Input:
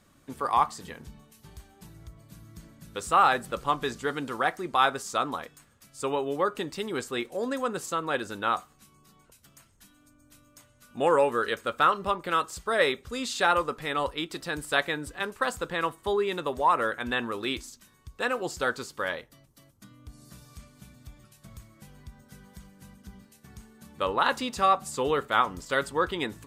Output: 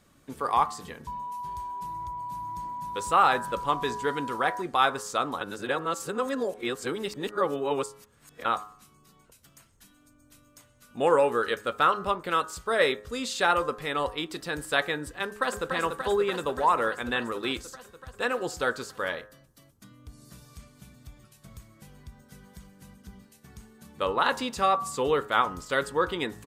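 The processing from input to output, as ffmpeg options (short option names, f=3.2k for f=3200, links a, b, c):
-filter_complex "[0:a]asettb=1/sr,asplit=3[a][b][c];[a]atrim=end=1.074[d];[b]atrim=start=1.07:end=4.62,asetpts=PTS-STARTPTS,afade=t=in:d=0.004:c=qsin,afade=t=out:st=3.546:d=0.004:c=qsin,aeval=exprs='val(0)+0.0224*sin(2*PI*980*n/s)':c=same[e];[c]atrim=start=4.616[f];[d][e]acrossfade=d=0.004:c1=hsin:c2=qsin[g];[g][f]acrossfade=d=0.004:c1=qsin:c2=hsin,asplit=2[h][i];[i]afade=t=in:st=15.23:d=0.01,afade=t=out:st=15.72:d=0.01,aecho=0:1:290|580|870|1160|1450|1740|2030|2320|2610|2900|3190|3480:0.530884|0.424708|0.339766|0.271813|0.21745|0.17396|0.139168|0.111335|0.0890676|0.0712541|0.0570033|0.0456026[j];[h][j]amix=inputs=2:normalize=0,asplit=3[k][l][m];[k]atrim=end=5.412[n];[l]atrim=start=5.408:end=8.452,asetpts=PTS-STARTPTS,areverse[o];[m]atrim=start=8.448[p];[n][o]acrossfade=d=0.004:c1=hsin:c2=hsin[q];[q][p]acrossfade=d=0.004:c1=hsin:c2=hsin,equalizer=f=460:w=4.7:g=2.5,bandreject=f=104.7:t=h:w=4,bandreject=f=209.4:t=h:w=4,bandreject=f=314.1:t=h:w=4,bandreject=f=418.8:t=h:w=4,bandreject=f=523.5:t=h:w=4,bandreject=f=628.2:t=h:w=4,bandreject=f=732.9:t=h:w=4,bandreject=f=837.6:t=h:w=4,bandreject=f=942.3:t=h:w=4,bandreject=f=1.047k:t=h:w=4,bandreject=f=1.1517k:t=h:w=4,bandreject=f=1.2564k:t=h:w=4,bandreject=f=1.3611k:t=h:w=4,bandreject=f=1.4658k:t=h:w=4,bandreject=f=1.5705k:t=h:w=4,bandreject=f=1.6752k:t=h:w=4,bandreject=f=1.7799k:t=h:w=4,bandreject=f=1.8846k:t=h:w=4"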